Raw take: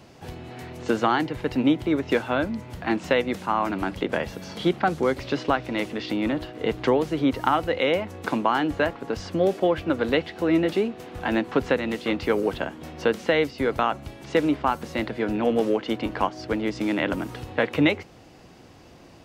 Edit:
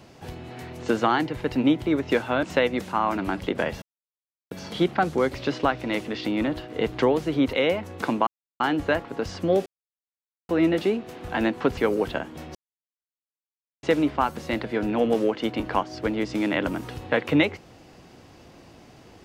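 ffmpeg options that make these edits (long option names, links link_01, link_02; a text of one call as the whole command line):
ffmpeg -i in.wav -filter_complex "[0:a]asplit=10[link_01][link_02][link_03][link_04][link_05][link_06][link_07][link_08][link_09][link_10];[link_01]atrim=end=2.432[link_11];[link_02]atrim=start=2.968:end=4.36,asetpts=PTS-STARTPTS,afade=type=out:start_time=1.388:duration=0.004:curve=hsin,apad=pad_dur=0.69[link_12];[link_03]atrim=start=4.36:end=7.382,asetpts=PTS-STARTPTS,afade=type=in:duration=0.004:curve=hsin[link_13];[link_04]atrim=start=7.768:end=8.51,asetpts=PTS-STARTPTS,afade=type=out:start_time=0.738:duration=0.004:curve=hsin,apad=pad_dur=0.33[link_14];[link_05]atrim=start=8.51:end=9.57,asetpts=PTS-STARTPTS,afade=type=in:duration=0.004:curve=hsin,afade=type=out:start_time=1.056:duration=0.004:curve=hsin[link_15];[link_06]atrim=start=9.57:end=10.4,asetpts=PTS-STARTPTS,volume=0[link_16];[link_07]atrim=start=10.4:end=11.682,asetpts=PTS-STARTPTS,afade=type=in:duration=0.004:curve=hsin[link_17];[link_08]atrim=start=12.228:end=13.01,asetpts=PTS-STARTPTS,afade=type=out:start_time=0.778:duration=0.004:curve=hsin[link_18];[link_09]atrim=start=13.01:end=14.29,asetpts=PTS-STARTPTS,volume=0[link_19];[link_10]atrim=start=14.29,asetpts=PTS-STARTPTS,afade=type=in:duration=0.004:curve=hsin[link_20];[link_12][link_13]concat=n=2:v=0:a=1[link_21];[link_11][link_21]acrossfade=duration=0.004:curve1=hsin:curve2=hsin[link_22];[link_14][link_15][link_16][link_17]concat=n=4:v=0:a=1[link_23];[link_22][link_23]acrossfade=duration=0.004:curve1=hsin:curve2=hsin[link_24];[link_18][link_19][link_20]concat=n=3:v=0:a=1[link_25];[link_24][link_25]acrossfade=duration=0.004:curve1=hsin:curve2=hsin" out.wav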